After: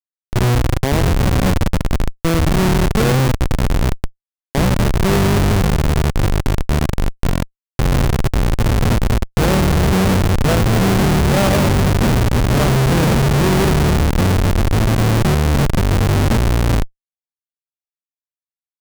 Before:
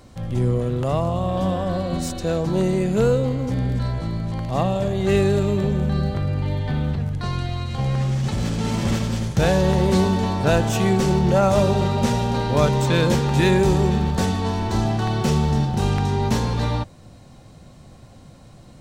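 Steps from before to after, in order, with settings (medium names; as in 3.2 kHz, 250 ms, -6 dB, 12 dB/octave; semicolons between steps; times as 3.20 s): Schmitt trigger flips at -17.5 dBFS; trim +7.5 dB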